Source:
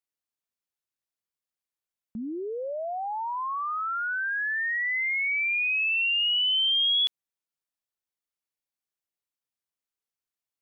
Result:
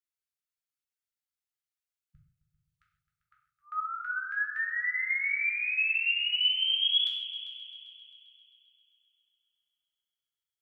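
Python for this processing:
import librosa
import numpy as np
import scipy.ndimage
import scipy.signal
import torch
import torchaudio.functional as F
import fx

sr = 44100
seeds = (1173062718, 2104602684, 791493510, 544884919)

y = fx.peak_eq(x, sr, hz=460.0, db=4.0, octaves=1.4)
y = fx.filter_lfo_highpass(y, sr, shape='saw_up', hz=fx.line((2.45, 1.4), (4.7, 4.8)), low_hz=910.0, high_hz=3400.0, q=1.0, at=(2.45, 4.7), fade=0.02)
y = fx.brickwall_bandstop(y, sr, low_hz=160.0, high_hz=1200.0)
y = fx.echo_heads(y, sr, ms=132, heads='all three', feedback_pct=54, wet_db=-18.0)
y = fx.rev_gated(y, sr, seeds[0], gate_ms=190, shape='falling', drr_db=-2.0)
y = y * 10.0 ** (-8.0 / 20.0)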